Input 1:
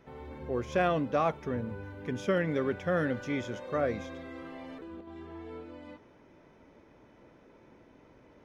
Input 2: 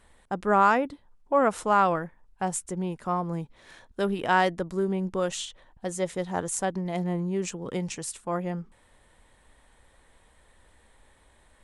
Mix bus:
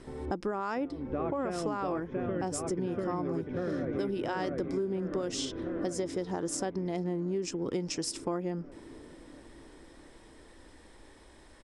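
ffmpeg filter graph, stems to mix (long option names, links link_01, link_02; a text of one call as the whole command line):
ffmpeg -i stem1.wav -i stem2.wav -filter_complex "[0:a]lowpass=2400,lowshelf=frequency=210:gain=8,volume=1dB,asplit=2[link_01][link_02];[link_02]volume=-5dB[link_03];[1:a]alimiter=limit=-18.5dB:level=0:latency=1:release=34,lowpass=9900,equalizer=frequency=5200:width=4.4:gain=13.5,volume=2.5dB,asplit=2[link_04][link_05];[link_05]apad=whole_len=372453[link_06];[link_01][link_06]sidechaincompress=threshold=-54dB:ratio=4:attack=16:release=214[link_07];[link_03]aecho=0:1:694|1388|2082|2776|3470|4164|4858|5552|6246:1|0.59|0.348|0.205|0.121|0.0715|0.0422|0.0249|0.0147[link_08];[link_07][link_04][link_08]amix=inputs=3:normalize=0,equalizer=frequency=330:width=1.9:gain=10.5,acompressor=threshold=-30dB:ratio=6" out.wav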